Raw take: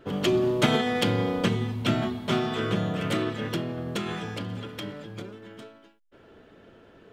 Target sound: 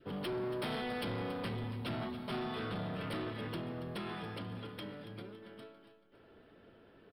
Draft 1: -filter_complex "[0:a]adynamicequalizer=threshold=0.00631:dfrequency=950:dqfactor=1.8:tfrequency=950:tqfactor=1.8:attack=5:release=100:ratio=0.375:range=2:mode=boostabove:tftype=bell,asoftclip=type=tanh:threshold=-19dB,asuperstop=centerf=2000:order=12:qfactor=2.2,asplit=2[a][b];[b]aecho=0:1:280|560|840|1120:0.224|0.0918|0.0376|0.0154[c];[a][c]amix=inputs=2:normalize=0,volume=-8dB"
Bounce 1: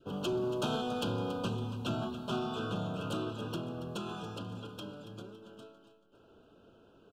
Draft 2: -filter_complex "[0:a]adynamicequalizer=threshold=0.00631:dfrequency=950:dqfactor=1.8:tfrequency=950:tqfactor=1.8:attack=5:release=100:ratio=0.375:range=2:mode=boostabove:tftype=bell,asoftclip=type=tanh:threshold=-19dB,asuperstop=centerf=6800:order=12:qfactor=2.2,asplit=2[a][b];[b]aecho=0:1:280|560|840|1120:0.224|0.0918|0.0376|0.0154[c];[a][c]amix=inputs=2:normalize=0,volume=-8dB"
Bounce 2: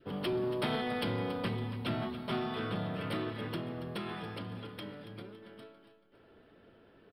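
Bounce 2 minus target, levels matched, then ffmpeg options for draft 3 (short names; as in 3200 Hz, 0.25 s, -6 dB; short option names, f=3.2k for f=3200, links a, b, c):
soft clip: distortion -7 dB
-filter_complex "[0:a]adynamicequalizer=threshold=0.00631:dfrequency=950:dqfactor=1.8:tfrequency=950:tqfactor=1.8:attack=5:release=100:ratio=0.375:range=2:mode=boostabove:tftype=bell,asoftclip=type=tanh:threshold=-27dB,asuperstop=centerf=6800:order=12:qfactor=2.2,asplit=2[a][b];[b]aecho=0:1:280|560|840|1120:0.224|0.0918|0.0376|0.0154[c];[a][c]amix=inputs=2:normalize=0,volume=-8dB"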